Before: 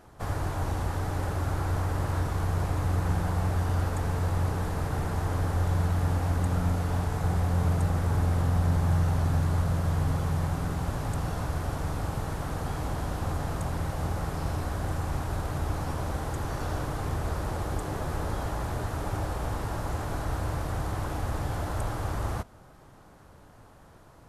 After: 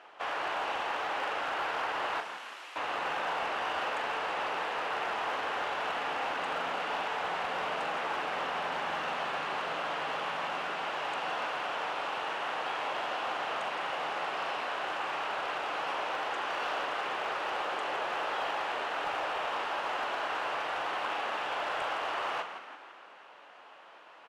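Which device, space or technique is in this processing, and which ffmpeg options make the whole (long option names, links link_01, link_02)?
megaphone: -filter_complex "[0:a]highpass=frequency=570:poles=1,asettb=1/sr,asplit=3[link_01][link_02][link_03];[link_01]atrim=end=2.204[link_04];[link_02]atrim=start=2.2:end=2.76,asetpts=PTS-STARTPTS,afade=type=in:duration=0.004:curve=qsin,afade=type=out:start_time=0.556:duration=0.004:curve=qsin,aderivative[link_05];[link_03]atrim=start=2.756[link_06];[link_04][link_05]acrossfade=duration=0.004:curve1=hsin:curve2=qsin[link_07];[link_07][link_06]acrossfade=duration=0.004:curve1=qsin:curve2=hsin,asplit=7[link_08][link_09][link_10][link_11][link_12][link_13][link_14];[link_09]adelay=165,afreqshift=71,volume=-10dB[link_15];[link_10]adelay=330,afreqshift=142,volume=-15.7dB[link_16];[link_11]adelay=495,afreqshift=213,volume=-21.4dB[link_17];[link_12]adelay=660,afreqshift=284,volume=-27dB[link_18];[link_13]adelay=825,afreqshift=355,volume=-32.7dB[link_19];[link_14]adelay=990,afreqshift=426,volume=-38.4dB[link_20];[link_08][link_15][link_16][link_17][link_18][link_19][link_20]amix=inputs=7:normalize=0,highpass=510,lowpass=3100,equalizer=frequency=2800:width_type=o:width=0.59:gain=11,asoftclip=type=hard:threshold=-32dB,asplit=2[link_21][link_22];[link_22]adelay=41,volume=-11dB[link_23];[link_21][link_23]amix=inputs=2:normalize=0,volume=5dB"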